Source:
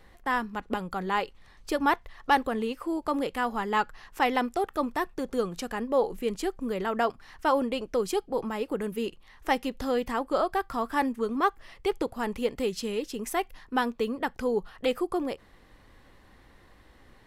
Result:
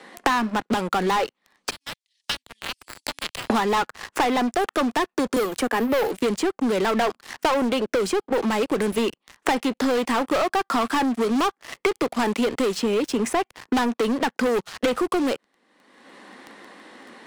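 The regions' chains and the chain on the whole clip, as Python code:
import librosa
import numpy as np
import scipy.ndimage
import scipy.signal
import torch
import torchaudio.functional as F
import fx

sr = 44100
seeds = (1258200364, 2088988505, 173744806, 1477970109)

y = fx.chain(x, sr, fx.law_mismatch(coded='A'),
    fx.cheby2_highpass(hz=1400.0, order=4, stop_db=60),
    fx.band_squash(depth_pct=70), at=(1.7, 3.5))
y = fx.chain(y, sr, fx.highpass(hz=230.0, slope=24),
    fx.resample_bad(factor=3, down='none', up='zero_stuff'), at=(5.36, 6.11))
y = scipy.signal.sosfilt(scipy.signal.ellip(3, 1.0, 40, [220.0, 9600.0], 'bandpass', fs=sr, output='sos'), y)
y = fx.leveller(y, sr, passes=5)
y = fx.band_squash(y, sr, depth_pct=100)
y = F.gain(torch.from_numpy(y), -6.0).numpy()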